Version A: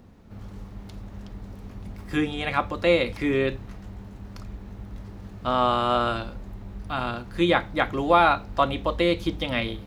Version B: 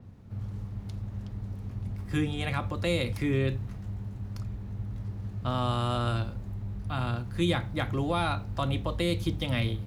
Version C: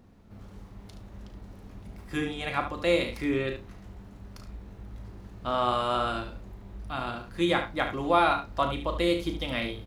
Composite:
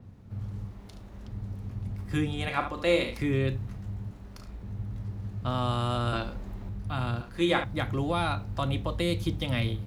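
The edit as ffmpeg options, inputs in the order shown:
-filter_complex "[2:a]asplit=4[a][b][c][d];[1:a]asplit=6[e][f][g][h][i][j];[e]atrim=end=0.712[k];[a]atrim=start=0.708:end=1.282[l];[f]atrim=start=1.278:end=2.482[m];[b]atrim=start=2.478:end=3.192[n];[g]atrim=start=3.188:end=4.112[o];[c]atrim=start=4.108:end=4.632[p];[h]atrim=start=4.628:end=6.132[q];[0:a]atrim=start=6.128:end=6.692[r];[i]atrim=start=6.688:end=7.212[s];[d]atrim=start=7.208:end=7.642[t];[j]atrim=start=7.638[u];[k][l]acrossfade=d=0.004:c1=hsin:c2=hsin[v];[v][m]acrossfade=d=0.004:c1=hsin:c2=hsin[w];[w][n]acrossfade=d=0.004:c1=hsin:c2=hsin[x];[x][o]acrossfade=d=0.004:c1=hsin:c2=hsin[y];[y][p]acrossfade=d=0.004:c1=hsin:c2=hsin[z];[z][q]acrossfade=d=0.004:c1=hsin:c2=hsin[aa];[aa][r]acrossfade=d=0.004:c1=hsin:c2=hsin[ab];[ab][s]acrossfade=d=0.004:c1=hsin:c2=hsin[ac];[ac][t]acrossfade=d=0.004:c1=hsin:c2=hsin[ad];[ad][u]acrossfade=d=0.004:c1=hsin:c2=hsin"

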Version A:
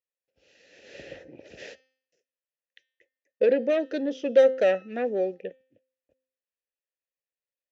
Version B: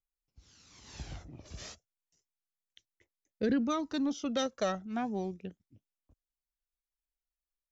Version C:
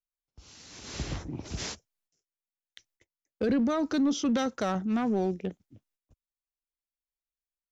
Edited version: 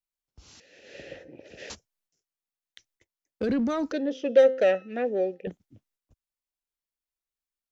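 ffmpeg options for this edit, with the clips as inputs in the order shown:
-filter_complex "[0:a]asplit=2[a][b];[2:a]asplit=3[c][d][e];[c]atrim=end=0.602[f];[a]atrim=start=0.598:end=1.702[g];[d]atrim=start=1.698:end=3.922[h];[b]atrim=start=3.918:end=5.472[i];[e]atrim=start=5.468[j];[f][g]acrossfade=d=0.004:c1=hsin:c2=hsin[k];[k][h]acrossfade=d=0.004:c1=hsin:c2=hsin[l];[l][i]acrossfade=d=0.004:c1=hsin:c2=hsin[m];[m][j]acrossfade=d=0.004:c1=hsin:c2=hsin"

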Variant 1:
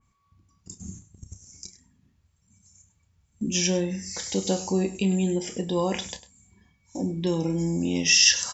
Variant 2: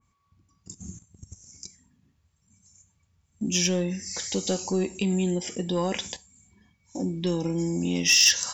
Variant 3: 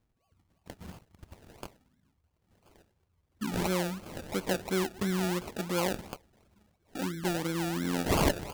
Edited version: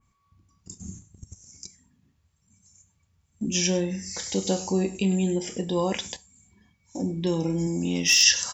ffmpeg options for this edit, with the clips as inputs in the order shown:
-filter_complex "[1:a]asplit=3[a][b][c];[0:a]asplit=4[d][e][f][g];[d]atrim=end=1.252[h];[a]atrim=start=1.248:end=3.452[i];[e]atrim=start=3.448:end=5.932[j];[b]atrim=start=5.928:end=7.022[k];[f]atrim=start=7.018:end=7.672[l];[c]atrim=start=7.668:end=8.232[m];[g]atrim=start=8.228[n];[h][i]acrossfade=d=0.004:c1=hsin:c2=hsin[o];[o][j]acrossfade=d=0.004:c1=hsin:c2=hsin[p];[p][k]acrossfade=d=0.004:c1=hsin:c2=hsin[q];[q][l]acrossfade=d=0.004:c1=hsin:c2=hsin[r];[r][m]acrossfade=d=0.004:c1=hsin:c2=hsin[s];[s][n]acrossfade=d=0.004:c1=hsin:c2=hsin"

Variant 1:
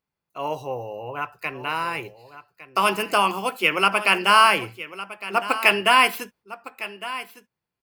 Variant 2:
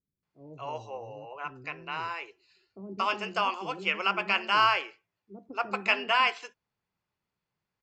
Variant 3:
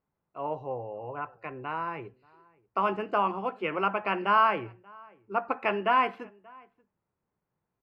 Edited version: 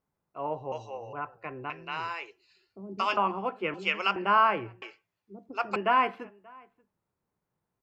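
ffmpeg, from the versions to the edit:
-filter_complex "[1:a]asplit=4[a][b][c][d];[2:a]asplit=5[e][f][g][h][i];[e]atrim=end=0.722[j];[a]atrim=start=0.718:end=1.132[k];[f]atrim=start=1.128:end=1.702[l];[b]atrim=start=1.698:end=3.172[m];[g]atrim=start=3.168:end=3.742[n];[c]atrim=start=3.738:end=4.162[o];[h]atrim=start=4.158:end=4.822[p];[d]atrim=start=4.818:end=5.762[q];[i]atrim=start=5.758[r];[j][k]acrossfade=d=0.004:c1=hsin:c2=hsin[s];[s][l]acrossfade=d=0.004:c1=hsin:c2=hsin[t];[t][m]acrossfade=d=0.004:c1=hsin:c2=hsin[u];[u][n]acrossfade=d=0.004:c1=hsin:c2=hsin[v];[v][o]acrossfade=d=0.004:c1=hsin:c2=hsin[w];[w][p]acrossfade=d=0.004:c1=hsin:c2=hsin[x];[x][q]acrossfade=d=0.004:c1=hsin:c2=hsin[y];[y][r]acrossfade=d=0.004:c1=hsin:c2=hsin"

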